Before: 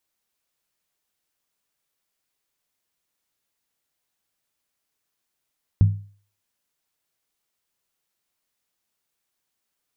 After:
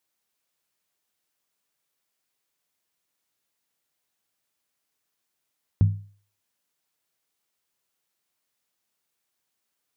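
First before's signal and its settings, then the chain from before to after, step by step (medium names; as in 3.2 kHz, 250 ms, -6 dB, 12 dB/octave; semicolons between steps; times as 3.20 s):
skin hit, lowest mode 101 Hz, decay 0.43 s, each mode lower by 10.5 dB, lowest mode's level -8.5 dB
high-pass 89 Hz 6 dB/octave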